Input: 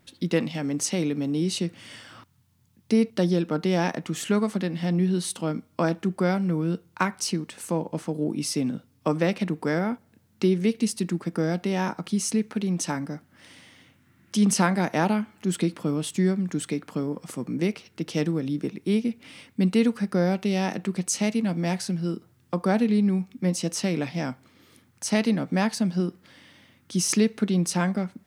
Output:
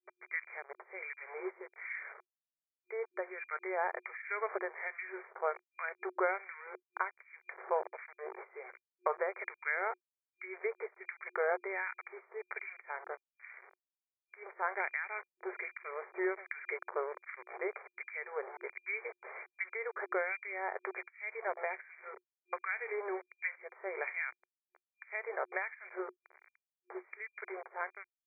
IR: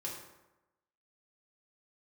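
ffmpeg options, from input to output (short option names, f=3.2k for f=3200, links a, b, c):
-filter_complex "[0:a]dynaudnorm=f=200:g=11:m=9dB,aderivative,aresample=16000,aeval=exprs='val(0)*gte(abs(val(0)),0.00501)':c=same,aresample=44100,acompressor=threshold=-34dB:ratio=10,alimiter=level_in=1dB:limit=-24dB:level=0:latency=1:release=391,volume=-1dB,acrossover=split=1600[a][b];[a]aeval=exprs='val(0)*(1-1/2+1/2*cos(2*PI*1.3*n/s))':c=same[c];[b]aeval=exprs='val(0)*(1-1/2-1/2*cos(2*PI*1.3*n/s))':c=same[d];[c][d]amix=inputs=2:normalize=0,afftfilt=real='re*between(b*sr/4096,360,2400)':imag='im*between(b*sr/4096,360,2400)':win_size=4096:overlap=0.75,volume=14.5dB"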